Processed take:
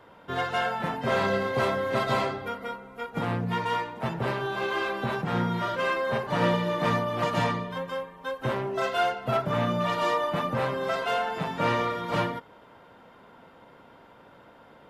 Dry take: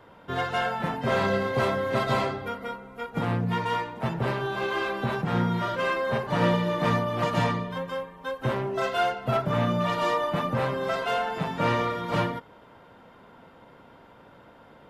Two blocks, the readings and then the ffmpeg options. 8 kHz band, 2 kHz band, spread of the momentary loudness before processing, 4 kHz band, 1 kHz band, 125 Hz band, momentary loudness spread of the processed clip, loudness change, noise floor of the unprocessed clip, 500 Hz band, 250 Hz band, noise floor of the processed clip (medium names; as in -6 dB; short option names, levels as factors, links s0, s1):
0.0 dB, 0.0 dB, 7 LU, 0.0 dB, 0.0 dB, -3.0 dB, 7 LU, -1.0 dB, -53 dBFS, -0.5 dB, -2.0 dB, -53 dBFS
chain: -af "lowshelf=f=200:g=-4.5"